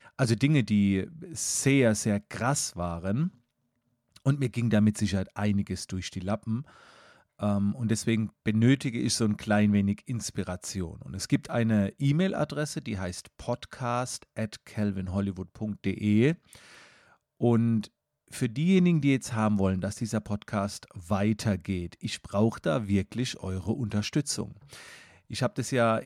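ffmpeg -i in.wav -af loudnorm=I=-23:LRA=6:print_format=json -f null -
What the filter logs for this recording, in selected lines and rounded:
"input_i" : "-28.5",
"input_tp" : "-11.6",
"input_lra" : "3.7",
"input_thresh" : "-39.0",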